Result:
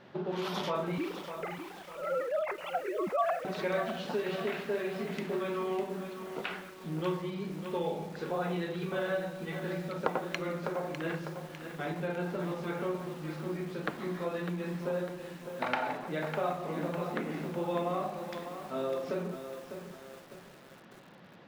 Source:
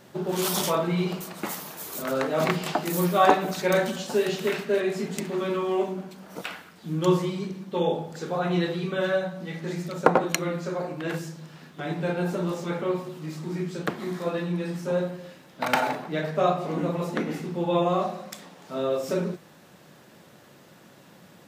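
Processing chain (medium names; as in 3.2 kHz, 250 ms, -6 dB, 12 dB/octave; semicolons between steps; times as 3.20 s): 0.98–3.45 s: formants replaced by sine waves; distance through air 310 m; compression 2.5:1, threshold -31 dBFS, peak gain reduction 12.5 dB; tilt EQ +1.5 dB/octave; de-hum 302 Hz, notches 34; bit-crushed delay 602 ms, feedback 55%, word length 8-bit, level -8.5 dB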